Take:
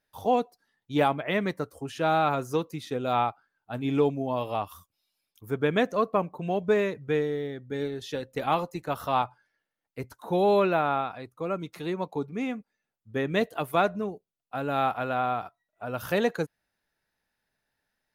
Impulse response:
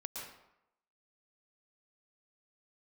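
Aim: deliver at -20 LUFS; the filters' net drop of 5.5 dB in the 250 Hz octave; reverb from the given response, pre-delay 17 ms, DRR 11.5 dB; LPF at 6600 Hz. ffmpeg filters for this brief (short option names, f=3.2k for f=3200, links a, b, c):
-filter_complex "[0:a]lowpass=6.6k,equalizer=f=250:t=o:g=-7.5,asplit=2[a][b];[1:a]atrim=start_sample=2205,adelay=17[c];[b][c]afir=irnorm=-1:irlink=0,volume=-10.5dB[d];[a][d]amix=inputs=2:normalize=0,volume=9.5dB"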